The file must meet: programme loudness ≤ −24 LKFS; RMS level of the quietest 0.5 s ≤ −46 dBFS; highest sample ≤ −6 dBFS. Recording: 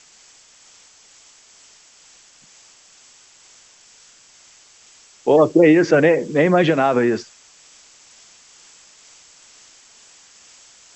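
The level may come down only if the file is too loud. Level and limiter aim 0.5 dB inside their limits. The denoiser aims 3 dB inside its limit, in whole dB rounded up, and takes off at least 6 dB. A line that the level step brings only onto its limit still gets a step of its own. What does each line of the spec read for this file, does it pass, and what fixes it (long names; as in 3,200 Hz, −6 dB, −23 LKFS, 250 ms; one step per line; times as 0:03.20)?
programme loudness −16.0 LKFS: out of spec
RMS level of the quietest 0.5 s −50 dBFS: in spec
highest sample −2.5 dBFS: out of spec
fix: level −8.5 dB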